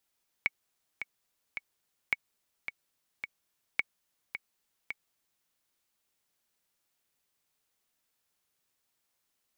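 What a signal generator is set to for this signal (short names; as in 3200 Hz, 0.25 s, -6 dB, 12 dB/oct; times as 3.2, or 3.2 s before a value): metronome 108 bpm, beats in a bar 3, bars 3, 2230 Hz, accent 9.5 dB -13 dBFS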